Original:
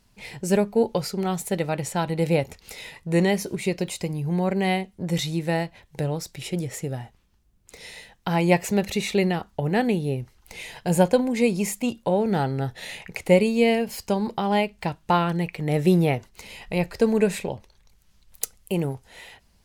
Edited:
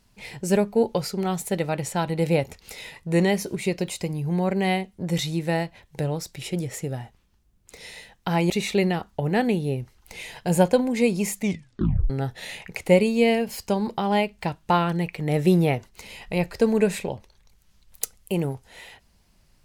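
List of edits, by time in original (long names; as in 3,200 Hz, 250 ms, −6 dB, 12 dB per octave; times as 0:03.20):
0:08.50–0:08.90: remove
0:11.75: tape stop 0.75 s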